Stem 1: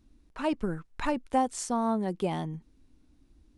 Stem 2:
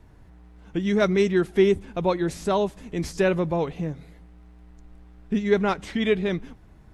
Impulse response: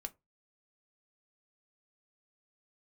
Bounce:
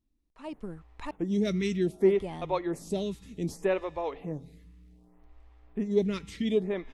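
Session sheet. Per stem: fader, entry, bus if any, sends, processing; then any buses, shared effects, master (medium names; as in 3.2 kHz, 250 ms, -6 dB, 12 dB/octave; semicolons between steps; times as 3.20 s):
-17.5 dB, 0.00 s, muted 1.11–2.05 s, no send, level rider gain up to 10 dB
+2.5 dB, 0.45 s, no send, feedback comb 91 Hz, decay 1.8 s, harmonics odd, mix 50%; lamp-driven phase shifter 0.65 Hz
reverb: none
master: peaking EQ 1.5 kHz -9 dB 0.23 oct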